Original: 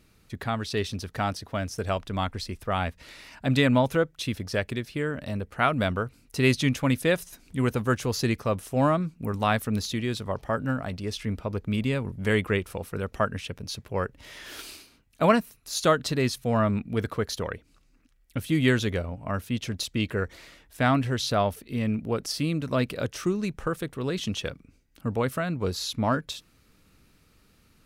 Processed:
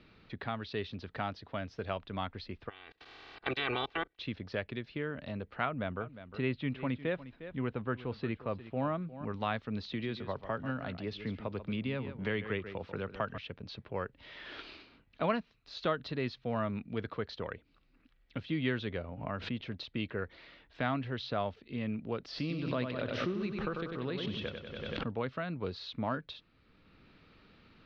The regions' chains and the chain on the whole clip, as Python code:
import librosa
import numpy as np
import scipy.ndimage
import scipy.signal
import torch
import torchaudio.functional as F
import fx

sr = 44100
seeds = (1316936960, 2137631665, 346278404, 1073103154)

y = fx.spec_clip(x, sr, under_db=27, at=(2.68, 4.18), fade=0.02)
y = fx.comb(y, sr, ms=2.6, depth=0.59, at=(2.68, 4.18), fade=0.02)
y = fx.level_steps(y, sr, step_db=24, at=(2.68, 4.18), fade=0.02)
y = fx.chain(y, sr, fx.air_absorb(metres=330.0),
    fx.echo_single(ms=356, db=-16.0), at=(5.65, 9.25))
y = fx.chain(y, sr, fx.echo_single(ms=140, db=-12.5),
    fx.band_squash(depth_pct=40), at=(9.88, 13.38))
y = fx.chain(y, sr, fx.high_shelf(hz=5400.0, db=-6.5),
    fx.pre_swell(db_per_s=58.0), at=(19.02, 19.67))
y = fx.chain(y, sr, fx.echo_feedback(ms=95, feedback_pct=54, wet_db=-6.5),
    fx.pre_swell(db_per_s=37.0), at=(22.28, 25.11))
y = scipy.signal.sosfilt(scipy.signal.butter(6, 4200.0, 'lowpass', fs=sr, output='sos'), y)
y = fx.low_shelf(y, sr, hz=120.0, db=-5.5)
y = fx.band_squash(y, sr, depth_pct=40)
y = y * librosa.db_to_amplitude(-8.5)